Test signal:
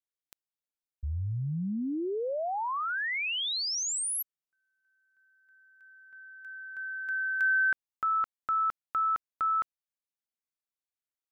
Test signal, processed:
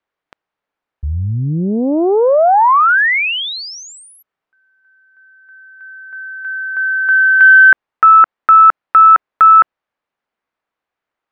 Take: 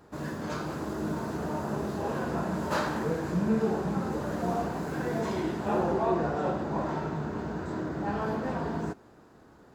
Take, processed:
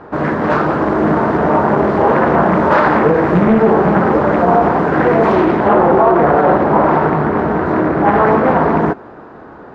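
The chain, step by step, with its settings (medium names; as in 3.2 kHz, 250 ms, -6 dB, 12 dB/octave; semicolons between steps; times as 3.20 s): low-pass 1.6 kHz 12 dB/octave; bass shelf 280 Hz -11 dB; loudness maximiser +25 dB; loudspeaker Doppler distortion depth 0.55 ms; trim -1 dB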